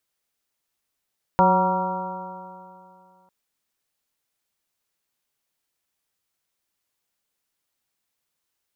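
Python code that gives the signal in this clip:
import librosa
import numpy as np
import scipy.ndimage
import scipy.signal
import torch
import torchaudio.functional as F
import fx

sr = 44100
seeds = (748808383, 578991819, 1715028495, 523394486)

y = fx.additive_stiff(sr, length_s=1.9, hz=182.0, level_db=-20, upper_db=(-7, 0.0, -2.0, 5.5, -7.5, -6.5), decay_s=2.54, stiffness=0.0033)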